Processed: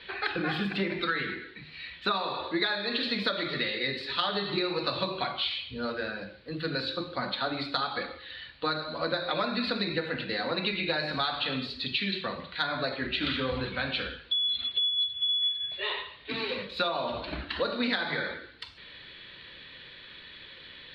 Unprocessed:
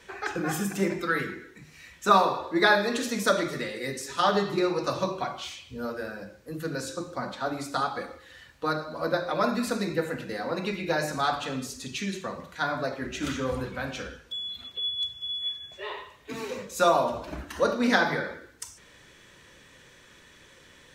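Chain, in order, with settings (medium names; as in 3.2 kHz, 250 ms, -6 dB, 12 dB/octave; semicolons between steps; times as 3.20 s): FFT filter 1 kHz 0 dB, 4.3 kHz +13 dB, 6.1 kHz -29 dB; compression 16:1, threshold -25 dBFS, peak gain reduction 15.5 dB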